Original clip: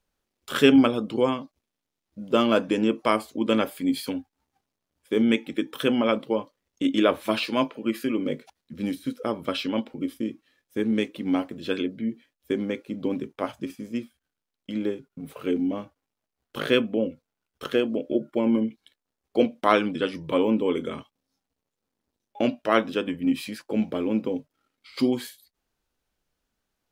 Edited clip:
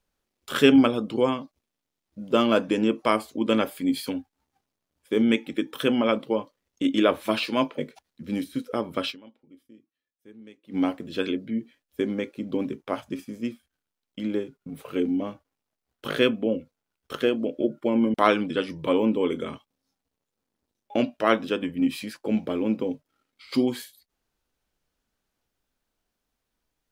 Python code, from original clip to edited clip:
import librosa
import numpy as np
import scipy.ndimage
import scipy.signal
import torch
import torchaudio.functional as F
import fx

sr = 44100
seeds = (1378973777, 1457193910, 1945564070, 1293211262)

y = fx.edit(x, sr, fx.cut(start_s=7.78, length_s=0.51),
    fx.fade_down_up(start_s=9.61, length_s=1.64, db=-23.0, fade_s=0.27, curve='exp'),
    fx.cut(start_s=18.65, length_s=0.94), tone=tone)